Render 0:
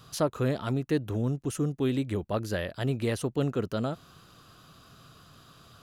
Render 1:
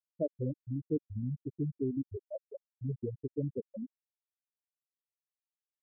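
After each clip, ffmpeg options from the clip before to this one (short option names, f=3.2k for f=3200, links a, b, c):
-af "afftfilt=real='re*gte(hypot(re,im),0.282)':imag='im*gte(hypot(re,im),0.282)':win_size=1024:overlap=0.75,volume=-4.5dB"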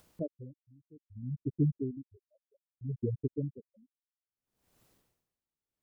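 -af "tiltshelf=f=680:g=9,acompressor=mode=upward:threshold=-38dB:ratio=2.5,aeval=exprs='val(0)*pow(10,-32*(0.5-0.5*cos(2*PI*0.63*n/s))/20)':c=same"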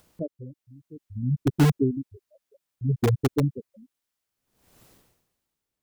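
-filter_complex "[0:a]dynaudnorm=f=390:g=3:m=9dB,asplit=2[a][b];[b]aeval=exprs='(mod(6.68*val(0)+1,2)-1)/6.68':c=same,volume=-7dB[c];[a][c]amix=inputs=2:normalize=0"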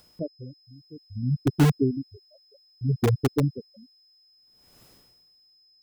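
-af "aeval=exprs='val(0)+0.00126*sin(2*PI*5100*n/s)':c=same"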